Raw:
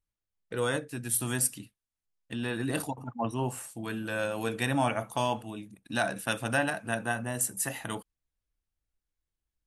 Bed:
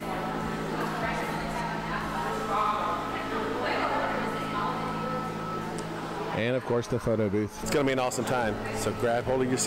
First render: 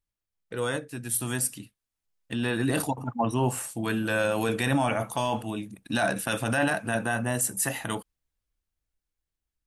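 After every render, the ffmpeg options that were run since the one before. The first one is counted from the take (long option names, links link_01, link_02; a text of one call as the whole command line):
ffmpeg -i in.wav -af "dynaudnorm=framelen=340:gausssize=13:maxgain=7.5dB,alimiter=limit=-15.5dB:level=0:latency=1:release=14" out.wav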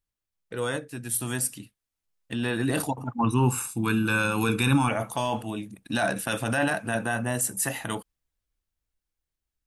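ffmpeg -i in.wav -filter_complex "[0:a]asettb=1/sr,asplit=3[link_01][link_02][link_03];[link_01]atrim=end=3.184[link_04];[link_02]atrim=start=3.18:end=4.89,asetpts=PTS-STARTPTS,afade=type=in:duration=0.004:curve=qsin,afade=type=out:start_time=1.706:duration=0.004:curve=qsin,aecho=1:1:0.8:0.92,atrim=end_sample=75411[link_05];[link_03]atrim=start=4.886[link_06];[link_04][link_05]acrossfade=duration=0.004:curve1=hsin:curve2=qsin[link_07];[link_07][link_06]acrossfade=duration=0.004:curve1=qsin:curve2=hsin" out.wav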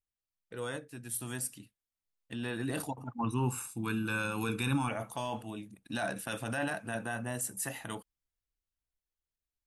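ffmpeg -i in.wav -af "volume=-9dB" out.wav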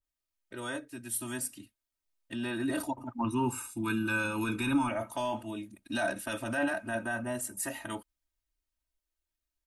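ffmpeg -i in.wav -af "aecho=1:1:3.2:0.96,adynamicequalizer=threshold=0.00501:dfrequency=2600:dqfactor=0.7:tfrequency=2600:tqfactor=0.7:attack=5:release=100:ratio=0.375:range=2.5:mode=cutabove:tftype=highshelf" out.wav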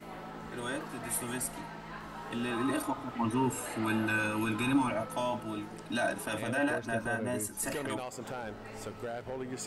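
ffmpeg -i in.wav -i bed.wav -filter_complex "[1:a]volume=-12.5dB[link_01];[0:a][link_01]amix=inputs=2:normalize=0" out.wav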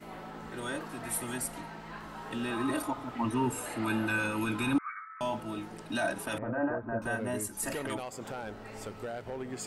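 ffmpeg -i in.wav -filter_complex "[0:a]asettb=1/sr,asplit=3[link_01][link_02][link_03];[link_01]atrim=end=4.784[link_04];[link_02]atrim=start=4.78:end=5.21,asetpts=PTS-STARTPTS,afade=type=in:duration=0.004:curve=qsin,afade=type=out:start_time=0.426:duration=0.004:curve=qsin,asuperpass=centerf=1600:order=20:qfactor=1.4[link_05];[link_03]atrim=start=5.206[link_06];[link_04][link_05]acrossfade=duration=0.004:curve1=hsin:curve2=qsin[link_07];[link_07][link_06]acrossfade=duration=0.004:curve1=qsin:curve2=hsin,asettb=1/sr,asplit=3[link_08][link_09][link_10];[link_08]atrim=end=6.384[link_11];[link_09]atrim=start=6.38:end=7.02,asetpts=PTS-STARTPTS,afade=type=in:duration=0.004:curve=qsin,afade=type=out:start_time=0.636:duration=0.004:curve=qsin,lowpass=frequency=1400:width=0.5412,lowpass=frequency=1400:width=1.3066[link_12];[link_10]atrim=start=7.016[link_13];[link_11][link_12]acrossfade=duration=0.004:curve1=hsin:curve2=qsin[link_14];[link_14][link_13]acrossfade=duration=0.004:curve1=qsin:curve2=hsin" out.wav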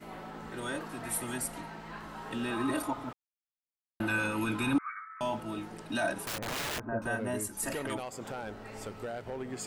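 ffmpeg -i in.wav -filter_complex "[0:a]asettb=1/sr,asplit=3[link_01][link_02][link_03];[link_01]atrim=end=6.244[link_04];[link_02]atrim=start=6.24:end=6.89,asetpts=PTS-STARTPTS,afade=type=in:duration=0.004:curve=qsin,afade=type=out:start_time=0.646:duration=0.004:curve=qsin,aeval=exprs='(mod(33.5*val(0)+1,2)-1)/33.5':channel_layout=same[link_05];[link_03]atrim=start=6.886[link_06];[link_04][link_05]acrossfade=duration=0.004:curve1=hsin:curve2=qsin[link_07];[link_07][link_06]acrossfade=duration=0.004:curve1=qsin:curve2=hsin,asplit=3[link_08][link_09][link_10];[link_08]atrim=end=3.13,asetpts=PTS-STARTPTS,afade=type=out:start_time=3.126:duration=0.004:curve=hsin[link_11];[link_09]atrim=start=3.13:end=4,asetpts=PTS-STARTPTS,volume=0[link_12];[link_10]atrim=start=4,asetpts=PTS-STARTPTS,afade=type=in:duration=0.004:curve=hsin[link_13];[link_11][link_12][link_13]concat=n=3:v=0:a=1" out.wav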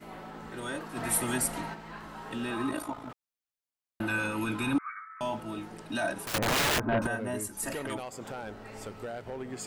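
ffmpeg -i in.wav -filter_complex "[0:a]asplit=3[link_01][link_02][link_03];[link_01]afade=type=out:start_time=0.95:duration=0.02[link_04];[link_02]acontrast=53,afade=type=in:start_time=0.95:duration=0.02,afade=type=out:start_time=1.73:duration=0.02[link_05];[link_03]afade=type=in:start_time=1.73:duration=0.02[link_06];[link_04][link_05][link_06]amix=inputs=3:normalize=0,asettb=1/sr,asplit=3[link_07][link_08][link_09];[link_07]atrim=end=2.694[link_10];[link_08]atrim=start=2.69:end=3.1,asetpts=PTS-STARTPTS,afade=type=in:duration=0.004:curve=qsin,afade=type=out:start_time=0.406:duration=0.004:curve=qsin,tremolo=f=54:d=0.621[link_11];[link_09]atrim=start=3.096[link_12];[link_10][link_11]acrossfade=duration=0.004:curve1=hsin:curve2=qsin[link_13];[link_13][link_12]acrossfade=duration=0.004:curve1=qsin:curve2=hsin,asettb=1/sr,asplit=3[link_14][link_15][link_16];[link_14]atrim=end=6.344[link_17];[link_15]atrim=start=6.34:end=7.07,asetpts=PTS-STARTPTS,afade=type=in:duration=0.004:curve=qsin,afade=type=out:start_time=0.726:duration=0.004:curve=qsin,aeval=exprs='0.0794*sin(PI/2*2*val(0)/0.0794)':channel_layout=same[link_18];[link_16]atrim=start=7.066[link_19];[link_17][link_18]acrossfade=duration=0.004:curve1=hsin:curve2=qsin[link_20];[link_20][link_19]acrossfade=duration=0.004:curve1=qsin:curve2=hsin" out.wav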